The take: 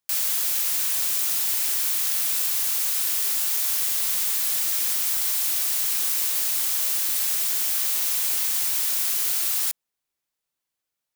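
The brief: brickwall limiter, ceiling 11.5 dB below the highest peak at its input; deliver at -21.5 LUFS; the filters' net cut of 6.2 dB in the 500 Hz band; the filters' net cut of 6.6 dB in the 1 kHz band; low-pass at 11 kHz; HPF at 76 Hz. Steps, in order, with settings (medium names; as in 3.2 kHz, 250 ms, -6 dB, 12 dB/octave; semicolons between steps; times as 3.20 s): high-pass 76 Hz; low-pass 11 kHz; peaking EQ 500 Hz -5.5 dB; peaking EQ 1 kHz -7.5 dB; trim +12.5 dB; peak limiter -15 dBFS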